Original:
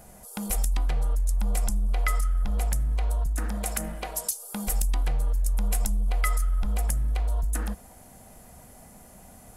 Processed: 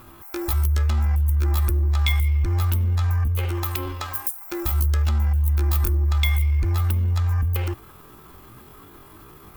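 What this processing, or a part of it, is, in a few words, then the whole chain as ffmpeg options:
chipmunk voice: -af "asetrate=74167,aresample=44100,atempo=0.594604,volume=4dB"

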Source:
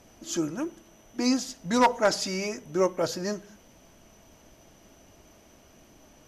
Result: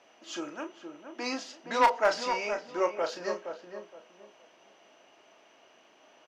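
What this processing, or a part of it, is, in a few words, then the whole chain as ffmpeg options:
megaphone: -filter_complex "[0:a]highpass=560,lowpass=3500,equalizer=frequency=2800:width_type=o:width=0.23:gain=5,asoftclip=type=hard:threshold=-14.5dB,asplit=2[link_01][link_02];[link_02]adelay=34,volume=-8dB[link_03];[link_01][link_03]amix=inputs=2:normalize=0,asplit=2[link_04][link_05];[link_05]adelay=468,lowpass=frequency=1100:poles=1,volume=-6.5dB,asplit=2[link_06][link_07];[link_07]adelay=468,lowpass=frequency=1100:poles=1,volume=0.28,asplit=2[link_08][link_09];[link_09]adelay=468,lowpass=frequency=1100:poles=1,volume=0.28,asplit=2[link_10][link_11];[link_11]adelay=468,lowpass=frequency=1100:poles=1,volume=0.28[link_12];[link_04][link_06][link_08][link_10][link_12]amix=inputs=5:normalize=0"

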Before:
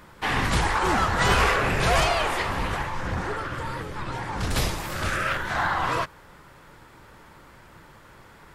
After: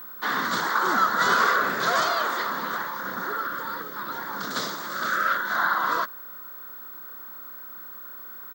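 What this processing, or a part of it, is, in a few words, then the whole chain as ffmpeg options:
old television with a line whistle: -af "highpass=frequency=200:width=0.5412,highpass=frequency=200:width=1.3066,equalizer=frequency=220:width_type=q:width=4:gain=3,equalizer=frequency=810:width_type=q:width=4:gain=-9,equalizer=frequency=1700:width_type=q:width=4:gain=-5,equalizer=frequency=2400:width_type=q:width=4:gain=-8,equalizer=frequency=3500:width_type=q:width=4:gain=7,equalizer=frequency=5300:width_type=q:width=4:gain=-4,lowpass=frequency=6700:width=0.5412,lowpass=frequency=6700:width=1.3066,aeval=exprs='val(0)+0.01*sin(2*PI*15734*n/s)':channel_layout=same,firequalizer=gain_entry='entry(450,0);entry(1500,13);entry(2700,-8);entry(4400,6)':delay=0.05:min_phase=1,volume=-4dB"

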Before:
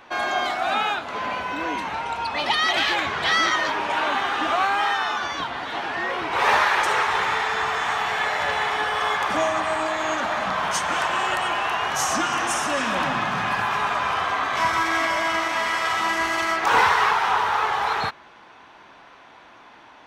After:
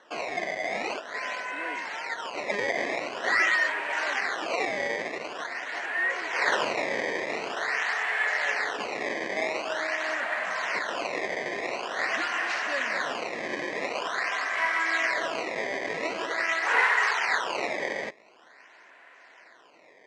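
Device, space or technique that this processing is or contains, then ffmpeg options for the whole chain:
circuit-bent sampling toy: -af "acrusher=samples=18:mix=1:aa=0.000001:lfo=1:lforange=28.8:lforate=0.46,highpass=500,equalizer=frequency=850:width_type=q:width=4:gain=-8,equalizer=frequency=1200:width_type=q:width=4:gain=-7,equalizer=frequency=1900:width_type=q:width=4:gain=8,equalizer=frequency=3500:width_type=q:width=4:gain=-8,equalizer=frequency=5200:width_type=q:width=4:gain=-5,lowpass=frequency=5500:width=0.5412,lowpass=frequency=5500:width=1.3066,volume=-3dB"

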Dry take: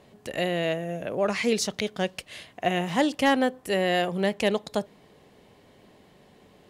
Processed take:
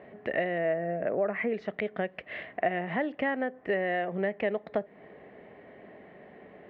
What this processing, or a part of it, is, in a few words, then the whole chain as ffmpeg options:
bass amplifier: -filter_complex "[0:a]asettb=1/sr,asplit=3[link_01][link_02][link_03];[link_01]atrim=end=0.584[link_04];[link_02]atrim=start=0.58:end=1.54,asetpts=PTS-STARTPTS,afade=type=in:duration=0.004:curve=qsin,afade=type=out:start_time=0.956:duration=0.004:curve=qsin,lowpass=2000[link_05];[link_03]atrim=start=1.536[link_06];[link_04][link_05]acrossfade=duration=0.004:curve1=hsin:curve2=qsin[link_07];[link_07][link_06]acrossfade=duration=0.004:curve1=qsin:curve2=hsin,acompressor=threshold=-33dB:ratio=5,highpass=84,equalizer=frequency=97:width_type=q:width=4:gain=-8,equalizer=frequency=140:width_type=q:width=4:gain=-5,equalizer=frequency=410:width_type=q:width=4:gain=3,equalizer=frequency=650:width_type=q:width=4:gain=7,equalizer=frequency=970:width_type=q:width=4:gain=-4,equalizer=frequency=1900:width_type=q:width=4:gain=8,lowpass=frequency=2300:width=0.5412,lowpass=frequency=2300:width=1.3066,volume=3.5dB"

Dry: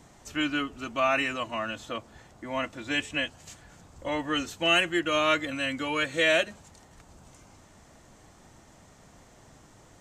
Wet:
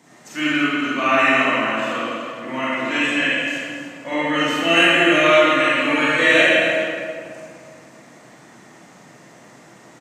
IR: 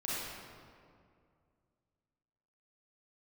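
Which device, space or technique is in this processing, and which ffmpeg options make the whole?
stadium PA: -filter_complex "[0:a]highpass=frequency=150:width=0.5412,highpass=frequency=150:width=1.3066,equalizer=frequency=2000:width_type=o:width=0.54:gain=6,aecho=1:1:166.2|285.7:0.282|0.282[link_01];[1:a]atrim=start_sample=2205[link_02];[link_01][link_02]afir=irnorm=-1:irlink=0,volume=4.5dB"

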